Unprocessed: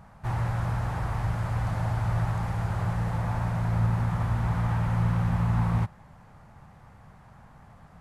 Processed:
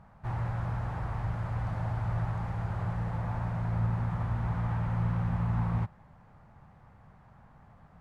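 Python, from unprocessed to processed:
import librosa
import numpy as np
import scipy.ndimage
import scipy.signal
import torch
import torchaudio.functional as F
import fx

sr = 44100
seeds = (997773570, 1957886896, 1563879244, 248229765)

y = fx.lowpass(x, sr, hz=2500.0, slope=6)
y = F.gain(torch.from_numpy(y), -4.5).numpy()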